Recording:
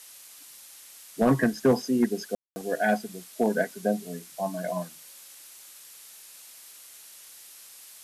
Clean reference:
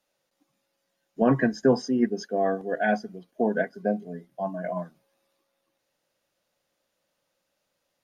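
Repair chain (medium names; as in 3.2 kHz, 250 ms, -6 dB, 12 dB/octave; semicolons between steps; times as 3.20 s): clip repair -14 dBFS; room tone fill 2.35–2.56 s; noise print and reduce 29 dB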